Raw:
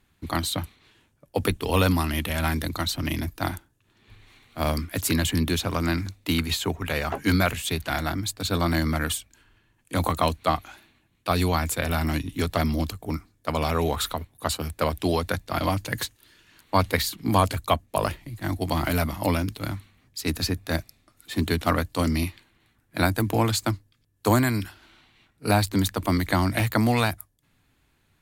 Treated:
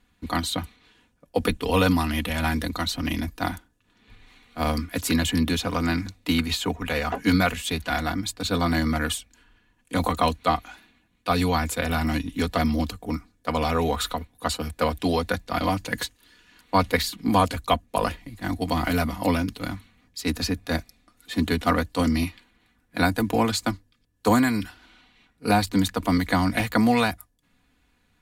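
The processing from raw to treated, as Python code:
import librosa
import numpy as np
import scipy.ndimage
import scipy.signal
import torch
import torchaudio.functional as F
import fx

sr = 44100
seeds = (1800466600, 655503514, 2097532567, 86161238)

y = fx.high_shelf(x, sr, hz=11000.0, db=-9.5)
y = y + 0.59 * np.pad(y, (int(4.1 * sr / 1000.0), 0))[:len(y)]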